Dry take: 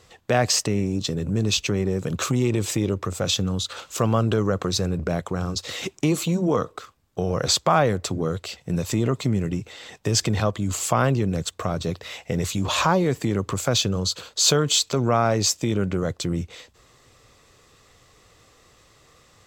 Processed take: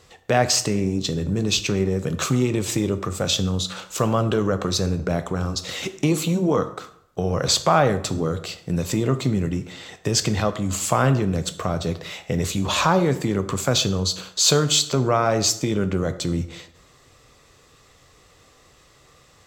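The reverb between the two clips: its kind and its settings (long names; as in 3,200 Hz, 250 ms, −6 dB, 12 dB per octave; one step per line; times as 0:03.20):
dense smooth reverb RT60 0.73 s, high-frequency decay 0.7×, DRR 9.5 dB
level +1 dB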